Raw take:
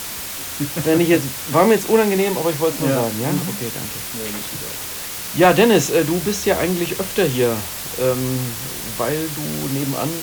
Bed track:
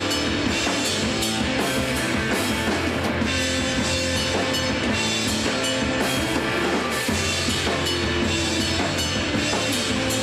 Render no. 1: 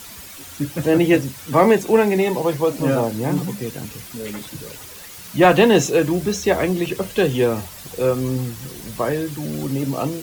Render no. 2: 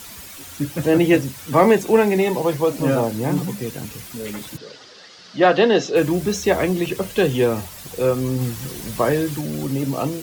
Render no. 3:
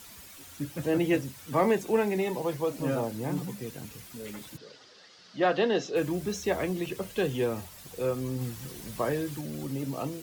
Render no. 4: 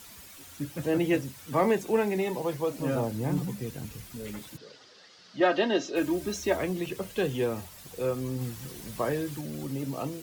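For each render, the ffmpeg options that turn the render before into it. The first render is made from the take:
ffmpeg -i in.wav -af "afftdn=noise_reduction=11:noise_floor=-29" out.wav
ffmpeg -i in.wav -filter_complex "[0:a]asplit=3[link_01][link_02][link_03];[link_01]afade=type=out:start_time=4.56:duration=0.02[link_04];[link_02]highpass=260,equalizer=frequency=320:width_type=q:width=4:gain=-3,equalizer=frequency=960:width_type=q:width=4:gain=-7,equalizer=frequency=2400:width_type=q:width=4:gain=-8,equalizer=frequency=4900:width_type=q:width=4:gain=5,lowpass=frequency=5000:width=0.5412,lowpass=frequency=5000:width=1.3066,afade=type=in:start_time=4.56:duration=0.02,afade=type=out:start_time=5.95:duration=0.02[link_05];[link_03]afade=type=in:start_time=5.95:duration=0.02[link_06];[link_04][link_05][link_06]amix=inputs=3:normalize=0,asplit=3[link_07][link_08][link_09];[link_07]atrim=end=8.412[link_10];[link_08]atrim=start=8.408:end=9.412,asetpts=PTS-STARTPTS,volume=3dB[link_11];[link_09]atrim=start=9.408[link_12];[link_10][link_11]acrossfade=duration=0.004:curve1=hsin:curve2=hsin[link_13];[link_13][link_12]acrossfade=duration=0.004:curve1=hsin:curve2=hsin" out.wav
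ffmpeg -i in.wav -af "volume=-10.5dB" out.wav
ffmpeg -i in.wav -filter_complex "[0:a]asettb=1/sr,asplit=3[link_01][link_02][link_03];[link_01]atrim=end=2.954[link_04];[link_02]atrim=start=2.95:end=4.4,asetpts=PTS-STARTPTS,afade=type=in:duration=0.004:curve=qsin,afade=type=out:start_time=1.446:duration=0.004:curve=qsin,lowshelf=frequency=120:gain=11[link_05];[link_03]atrim=start=4.396[link_06];[link_04][link_05]acrossfade=duration=0.004:curve1=hsin:curve2=qsin[link_07];[link_07][link_06]acrossfade=duration=0.004:curve1=qsin:curve2=hsin,asettb=1/sr,asplit=3[link_08][link_09][link_10];[link_08]atrim=end=5.404[link_11];[link_09]atrim=start=5.4:end=6.57,asetpts=PTS-STARTPTS,afade=type=in:duration=0.004:curve=qsin,afade=type=out:start_time=1.166:duration=0.004:curve=qsin,aecho=1:1:3.2:0.66,atrim=end_sample=51597[link_12];[link_10]atrim=start=6.566[link_13];[link_11][link_12]acrossfade=duration=0.004:curve1=hsin:curve2=qsin[link_14];[link_14][link_13]acrossfade=duration=0.004:curve1=qsin:curve2=hsin" out.wav

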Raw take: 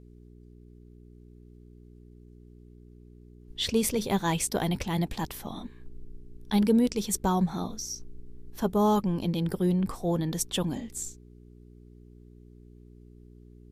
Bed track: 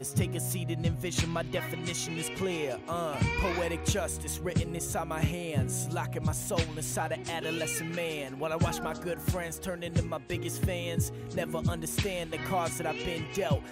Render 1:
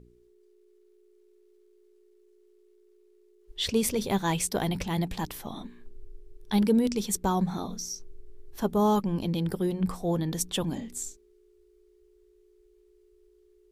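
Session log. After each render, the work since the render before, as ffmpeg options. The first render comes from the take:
ffmpeg -i in.wav -af "bandreject=frequency=60:width_type=h:width=4,bandreject=frequency=120:width_type=h:width=4,bandreject=frequency=180:width_type=h:width=4,bandreject=frequency=240:width_type=h:width=4,bandreject=frequency=300:width_type=h:width=4" out.wav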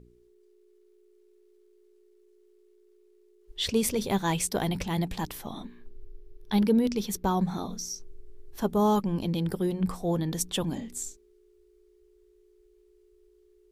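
ffmpeg -i in.wav -filter_complex "[0:a]asettb=1/sr,asplit=3[link_01][link_02][link_03];[link_01]atrim=end=5.654[link_04];[link_02]atrim=start=5.65:end=7.42,asetpts=PTS-STARTPTS,afade=type=in:duration=0.004:curve=qsin,afade=type=out:start_time=1.766:duration=0.004:curve=qsin,equalizer=frequency=8100:width=2:gain=-9[link_05];[link_03]atrim=start=7.416[link_06];[link_04][link_05]acrossfade=duration=0.004:curve1=hsin:curve2=qsin[link_07];[link_07][link_06]acrossfade=duration=0.004:curve1=qsin:curve2=hsin" out.wav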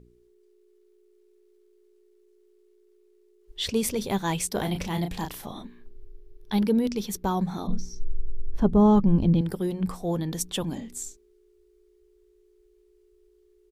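ffmpeg -i in.wav -filter_complex "[0:a]asplit=3[link_01][link_02][link_03];[link_01]afade=type=out:start_time=4.56:duration=0.02[link_04];[link_02]asplit=2[link_05][link_06];[link_06]adelay=34,volume=-6.5dB[link_07];[link_05][link_07]amix=inputs=2:normalize=0,afade=type=in:start_time=4.56:duration=0.02,afade=type=out:start_time=5.61:duration=0.02[link_08];[link_03]afade=type=in:start_time=5.61:duration=0.02[link_09];[link_04][link_08][link_09]amix=inputs=3:normalize=0,asettb=1/sr,asplit=3[link_10][link_11][link_12];[link_10]atrim=end=7.674[link_13];[link_11]atrim=start=7.67:end=9.41,asetpts=PTS-STARTPTS,afade=type=in:duration=0.004:curve=qsin,afade=type=out:start_time=1.736:duration=0.004:curve=qsin,aemphasis=mode=reproduction:type=riaa[link_14];[link_12]atrim=start=9.406[link_15];[link_13][link_14]acrossfade=duration=0.004:curve1=hsin:curve2=qsin[link_16];[link_16][link_15]acrossfade=duration=0.004:curve1=qsin:curve2=hsin" out.wav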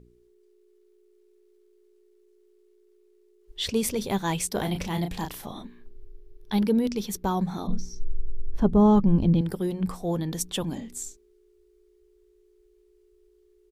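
ffmpeg -i in.wav -af anull out.wav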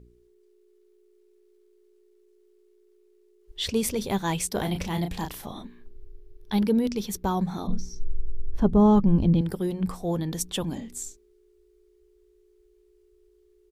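ffmpeg -i in.wav -af "equalizer=frequency=65:width_type=o:width=0.77:gain=4.5" out.wav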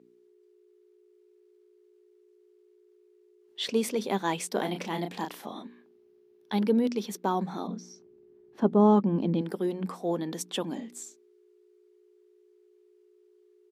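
ffmpeg -i in.wav -af "highpass=frequency=220:width=0.5412,highpass=frequency=220:width=1.3066,aemphasis=mode=reproduction:type=cd" out.wav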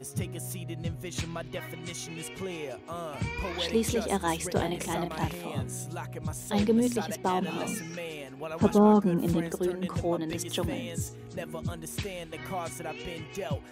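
ffmpeg -i in.wav -i bed.wav -filter_complex "[1:a]volume=-4.5dB[link_01];[0:a][link_01]amix=inputs=2:normalize=0" out.wav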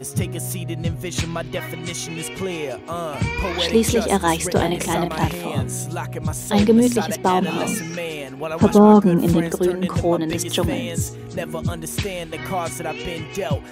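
ffmpeg -i in.wav -af "volume=10dB,alimiter=limit=-2dB:level=0:latency=1" out.wav

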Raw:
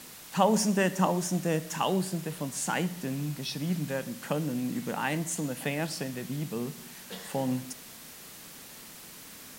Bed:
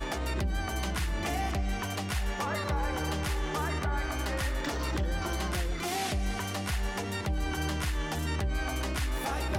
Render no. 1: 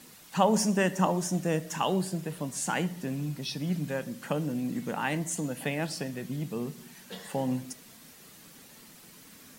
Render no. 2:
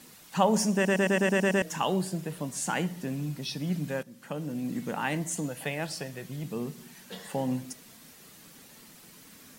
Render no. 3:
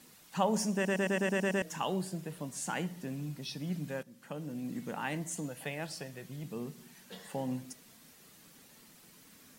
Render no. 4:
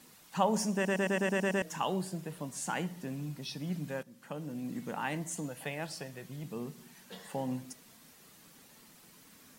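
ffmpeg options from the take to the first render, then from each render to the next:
ffmpeg -i in.wav -af "afftdn=noise_reduction=7:noise_floor=-48" out.wav
ffmpeg -i in.wav -filter_complex "[0:a]asettb=1/sr,asplit=3[link_01][link_02][link_03];[link_01]atrim=end=5.494[link_04];[link_02]atrim=start=5.49:end=6.44,asetpts=PTS-STARTPTS,afade=type=in:duration=0.004:curve=qsin,afade=type=out:start_time=0.946:duration=0.004:curve=qsin,equalizer=frequency=240:width_type=o:width=0.77:gain=-9[link_05];[link_03]atrim=start=6.436[link_06];[link_04][link_05]acrossfade=duration=0.004:curve1=hsin:curve2=qsin[link_07];[link_07][link_06]acrossfade=duration=0.004:curve1=qsin:curve2=hsin,asplit=10[link_08][link_09][link_10][link_11][link_12][link_13][link_14][link_15][link_16][link_17];[link_08]atrim=end=0.852[link_18];[link_09]atrim=start=0.738:end=0.852[link_19];[link_10]atrim=start=0.738:end=0.852[link_20];[link_11]atrim=start=0.738:end=0.852[link_21];[link_12]atrim=start=0.738:end=0.852[link_22];[link_13]atrim=start=0.738:end=0.852[link_23];[link_14]atrim=start=0.738:end=0.852[link_24];[link_15]atrim=start=0.738:end=0.852[link_25];[link_16]atrim=start=1.618:end=4.03,asetpts=PTS-STARTPTS,afade=type=out:start_time=2.408:duration=0.004:curve=hsin:silence=0.177828[link_26];[link_17]atrim=start=4.03,asetpts=PTS-STARTPTS,afade=type=in:duration=0.71:silence=0.177828[link_27];[link_18][link_19]acrossfade=duration=0.004:curve1=hsin:curve2=hsin[link_28];[link_28][link_20]acrossfade=duration=0.004:curve1=hsin:curve2=hsin[link_29];[link_29][link_21]acrossfade=duration=0.004:curve1=hsin:curve2=hsin[link_30];[link_30][link_22]acrossfade=duration=0.004:curve1=hsin:curve2=hsin[link_31];[link_31][link_23]acrossfade=duration=0.004:curve1=hsin:curve2=hsin[link_32];[link_32][link_24]acrossfade=duration=0.004:curve1=hsin:curve2=hsin[link_33];[link_33][link_25]acrossfade=duration=0.004:curve1=hsin:curve2=hsin[link_34];[link_26][link_27]concat=n=2:v=0:a=1[link_35];[link_34][link_35]acrossfade=duration=0.004:curve1=hsin:curve2=hsin" out.wav
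ffmpeg -i in.wav -af "volume=-6dB" out.wav
ffmpeg -i in.wav -af "equalizer=frequency=970:width=1.5:gain=2.5" out.wav

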